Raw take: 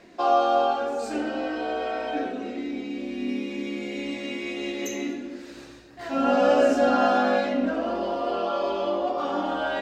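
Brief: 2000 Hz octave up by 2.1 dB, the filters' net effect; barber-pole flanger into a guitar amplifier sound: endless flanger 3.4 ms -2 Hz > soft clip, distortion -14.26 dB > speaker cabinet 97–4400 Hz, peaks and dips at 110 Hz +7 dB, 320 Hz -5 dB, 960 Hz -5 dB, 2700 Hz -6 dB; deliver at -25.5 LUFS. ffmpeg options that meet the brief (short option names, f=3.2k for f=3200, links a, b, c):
-filter_complex "[0:a]equalizer=f=2k:t=o:g=4.5,asplit=2[a][b];[b]adelay=3.4,afreqshift=-2[c];[a][c]amix=inputs=2:normalize=1,asoftclip=threshold=-20dB,highpass=97,equalizer=f=110:t=q:w=4:g=7,equalizer=f=320:t=q:w=4:g=-5,equalizer=f=960:t=q:w=4:g=-5,equalizer=f=2.7k:t=q:w=4:g=-6,lowpass=f=4.4k:w=0.5412,lowpass=f=4.4k:w=1.3066,volume=5.5dB"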